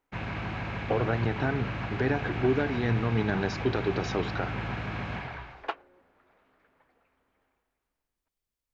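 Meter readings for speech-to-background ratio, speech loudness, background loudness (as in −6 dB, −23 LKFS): 5.0 dB, −30.0 LKFS, −35.0 LKFS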